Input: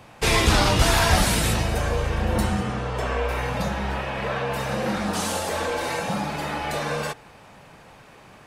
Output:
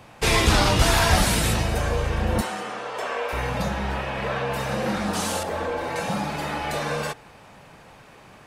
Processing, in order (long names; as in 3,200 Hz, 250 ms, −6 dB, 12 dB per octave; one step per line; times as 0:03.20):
0:02.41–0:03.33: high-pass filter 440 Hz 12 dB per octave
0:05.43–0:05.96: parametric band 9,400 Hz −13 dB 2.8 octaves